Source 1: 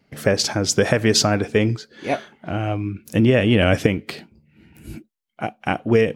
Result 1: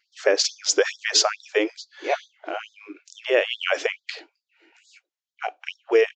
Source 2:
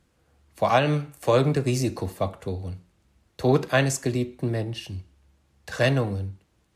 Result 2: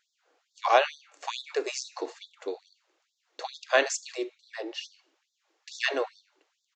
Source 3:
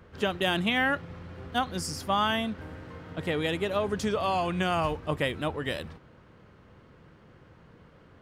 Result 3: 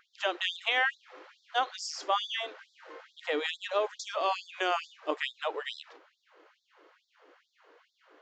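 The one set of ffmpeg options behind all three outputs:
-af "aresample=16000,aresample=44100,afftfilt=real='re*gte(b*sr/1024,270*pow(3500/270,0.5+0.5*sin(2*PI*2.3*pts/sr)))':imag='im*gte(b*sr/1024,270*pow(3500/270,0.5+0.5*sin(2*PI*2.3*pts/sr)))':win_size=1024:overlap=0.75"

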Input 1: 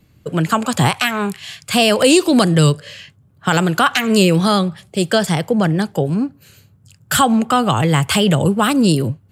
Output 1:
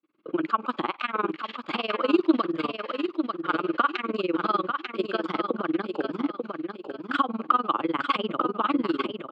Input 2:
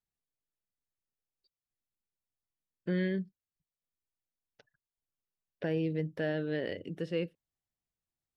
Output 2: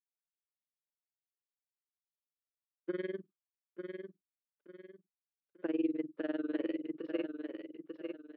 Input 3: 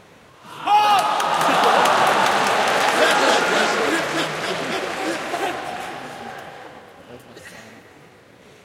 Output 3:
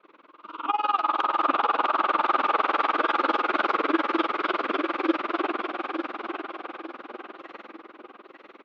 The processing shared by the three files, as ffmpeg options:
-filter_complex "[0:a]acompressor=threshold=0.126:ratio=6,agate=range=0.0224:threshold=0.00562:ratio=3:detection=peak,highpass=f=290:w=0.5412,highpass=f=290:w=1.3066,equalizer=f=320:t=q:w=4:g=9,equalizer=f=460:t=q:w=4:g=-4,equalizer=f=720:t=q:w=4:g=-8,equalizer=f=1200:t=q:w=4:g=9,equalizer=f=1800:t=q:w=4:g=-8,equalizer=f=2900:t=q:w=4:g=-3,lowpass=f=3100:w=0.5412,lowpass=f=3100:w=1.3066,asplit=2[s0][s1];[s1]aecho=0:1:891|1782|2673|3564:0.501|0.175|0.0614|0.0215[s2];[s0][s2]amix=inputs=2:normalize=0,tremolo=f=20:d=0.95"

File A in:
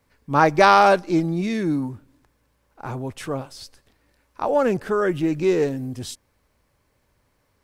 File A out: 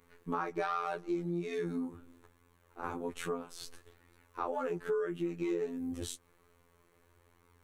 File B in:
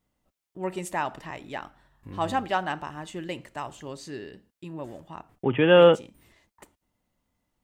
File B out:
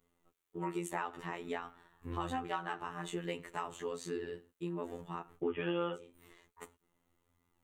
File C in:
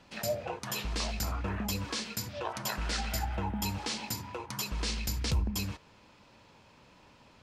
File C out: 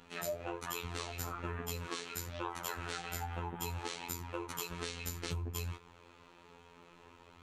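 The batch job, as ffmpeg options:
-filter_complex "[0:a]asplit=2[s0][s1];[s1]alimiter=limit=0.251:level=0:latency=1:release=490,volume=1.19[s2];[s0][s2]amix=inputs=2:normalize=0,equalizer=f=200:t=o:w=0.33:g=-7,equalizer=f=400:t=o:w=0.33:g=10,equalizer=f=630:t=o:w=0.33:g=-5,equalizer=f=1250:t=o:w=0.33:g=5,equalizer=f=5000:t=o:w=0.33:g=-10,afftfilt=real='hypot(re,im)*cos(PI*b)':imag='0':win_size=2048:overlap=0.75,flanger=delay=4.2:depth=6.6:regen=-38:speed=0.6:shape=sinusoidal,acompressor=threshold=0.0178:ratio=4"

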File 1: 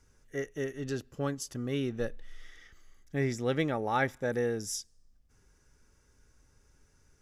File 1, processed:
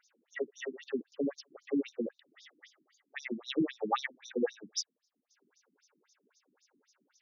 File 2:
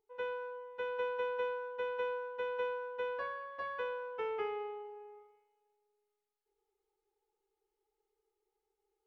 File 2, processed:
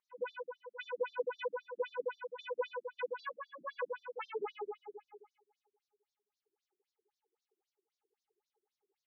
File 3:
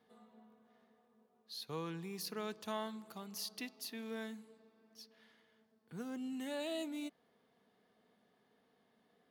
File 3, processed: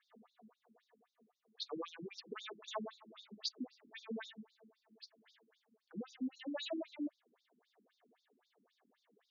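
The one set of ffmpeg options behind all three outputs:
-af "crystalizer=i=1:c=0,afftfilt=real='re*between(b*sr/1024,240*pow(5100/240,0.5+0.5*sin(2*PI*3.8*pts/sr))/1.41,240*pow(5100/240,0.5+0.5*sin(2*PI*3.8*pts/sr))*1.41)':imag='im*between(b*sr/1024,240*pow(5100/240,0.5+0.5*sin(2*PI*3.8*pts/sr))/1.41,240*pow(5100/240,0.5+0.5*sin(2*PI*3.8*pts/sr))*1.41)':win_size=1024:overlap=0.75,volume=1.88"

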